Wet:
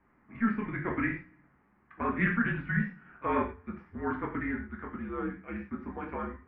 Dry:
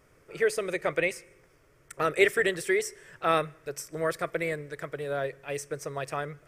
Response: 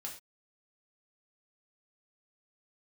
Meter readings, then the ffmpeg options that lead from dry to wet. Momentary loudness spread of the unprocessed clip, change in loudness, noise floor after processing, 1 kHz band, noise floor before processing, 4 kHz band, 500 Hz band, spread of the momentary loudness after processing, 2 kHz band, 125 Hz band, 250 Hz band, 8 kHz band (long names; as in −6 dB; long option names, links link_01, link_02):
13 LU, −4.0 dB, −67 dBFS, −2.5 dB, −62 dBFS, below −15 dB, −11.0 dB, 11 LU, −3.5 dB, +4.5 dB, +6.0 dB, below −40 dB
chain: -filter_complex "[0:a]highpass=frequency=170:width_type=q:width=0.5412,highpass=frequency=170:width_type=q:width=1.307,lowpass=frequency=2500:width_type=q:width=0.5176,lowpass=frequency=2500:width_type=q:width=0.7071,lowpass=frequency=2500:width_type=q:width=1.932,afreqshift=-220,bandreject=frequency=88.03:width_type=h:width=4,bandreject=frequency=176.06:width_type=h:width=4,bandreject=frequency=264.09:width_type=h:width=4,bandreject=frequency=352.12:width_type=h:width=4,bandreject=frequency=440.15:width_type=h:width=4,bandreject=frequency=528.18:width_type=h:width=4[link_01];[1:a]atrim=start_sample=2205[link_02];[link_01][link_02]afir=irnorm=-1:irlink=0"